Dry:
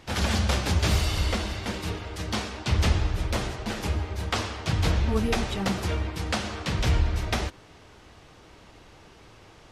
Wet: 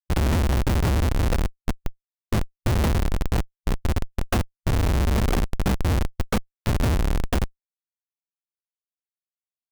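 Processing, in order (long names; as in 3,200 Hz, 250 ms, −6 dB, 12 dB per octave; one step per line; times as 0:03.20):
comparator with hysteresis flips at −21.5 dBFS
formants moved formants −3 semitones
level +7.5 dB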